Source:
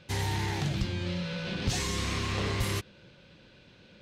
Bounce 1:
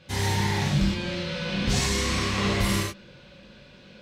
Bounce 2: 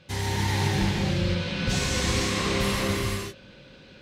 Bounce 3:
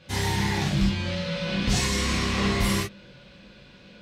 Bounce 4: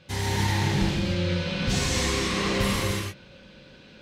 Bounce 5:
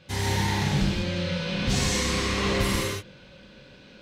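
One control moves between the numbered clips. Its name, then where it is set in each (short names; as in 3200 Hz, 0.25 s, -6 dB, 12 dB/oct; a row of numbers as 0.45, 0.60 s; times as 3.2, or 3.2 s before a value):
non-linear reverb, gate: 140, 540, 90, 340, 230 ms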